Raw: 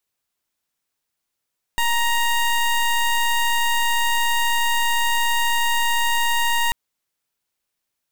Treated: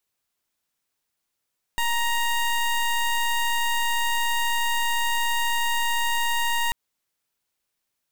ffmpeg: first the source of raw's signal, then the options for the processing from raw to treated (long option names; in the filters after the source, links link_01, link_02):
-f lavfi -i "aevalsrc='0.112*(2*lt(mod(937*t,1),0.18)-1)':duration=4.94:sample_rate=44100"
-af "alimiter=limit=-23dB:level=0:latency=1:release=114"